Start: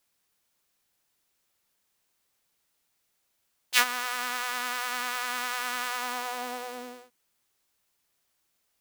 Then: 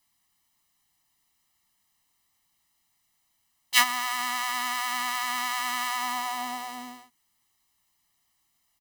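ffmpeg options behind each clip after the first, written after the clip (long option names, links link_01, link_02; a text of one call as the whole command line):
ffmpeg -i in.wav -af "aecho=1:1:1:0.88" out.wav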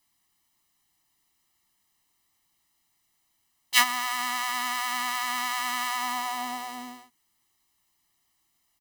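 ffmpeg -i in.wav -af "equalizer=frequency=340:width_type=o:width=0.53:gain=4.5" out.wav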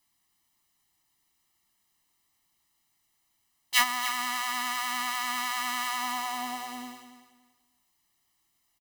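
ffmpeg -i in.wav -af "asoftclip=type=tanh:threshold=-5.5dB,aecho=1:1:284|568|852:0.251|0.0578|0.0133,volume=-1.5dB" out.wav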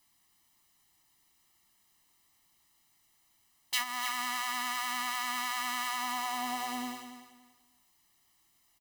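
ffmpeg -i in.wav -af "acompressor=threshold=-34dB:ratio=5,volume=4dB" out.wav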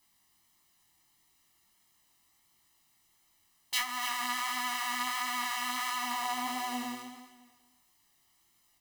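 ffmpeg -i in.wav -af "flanger=delay=19:depth=5.7:speed=1.5,volume=3.5dB" out.wav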